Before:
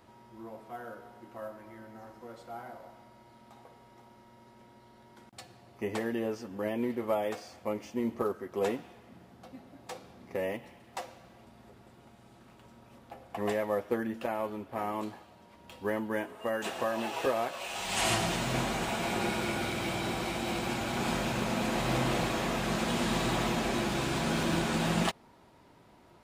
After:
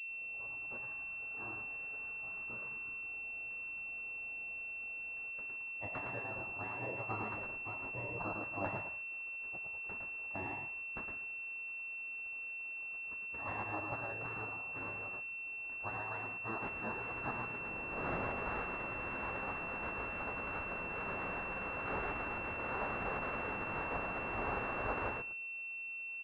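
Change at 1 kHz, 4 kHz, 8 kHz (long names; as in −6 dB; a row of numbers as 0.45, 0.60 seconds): −6.5 dB, below −20 dB, below −35 dB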